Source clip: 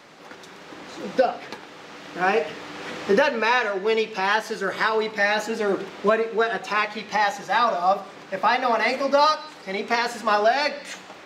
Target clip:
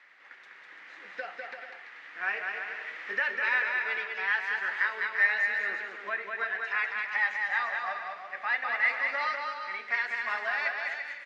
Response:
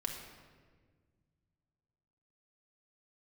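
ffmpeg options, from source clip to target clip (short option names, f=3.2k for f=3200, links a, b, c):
-af "bandpass=f=1.9k:t=q:w=4.3:csg=0,aecho=1:1:200|340|438|506.6|554.6:0.631|0.398|0.251|0.158|0.1"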